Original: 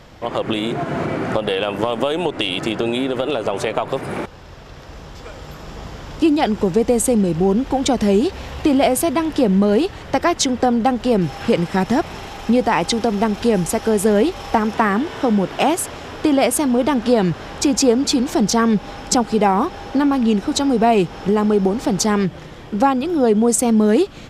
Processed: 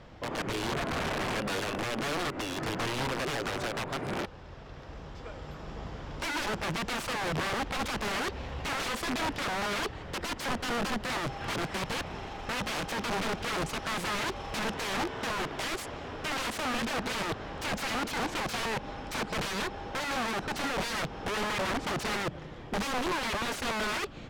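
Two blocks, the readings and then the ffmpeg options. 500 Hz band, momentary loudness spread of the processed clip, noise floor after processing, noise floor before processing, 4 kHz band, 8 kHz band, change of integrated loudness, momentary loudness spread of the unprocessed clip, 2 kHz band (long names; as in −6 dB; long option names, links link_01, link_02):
−18.0 dB, 6 LU, −44 dBFS, −37 dBFS, −8.0 dB, −14.5 dB, −14.5 dB, 9 LU, −4.5 dB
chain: -af "aeval=exprs='(mod(7.94*val(0)+1,2)-1)/7.94':channel_layout=same,aemphasis=mode=reproduction:type=50fm,volume=-7.5dB"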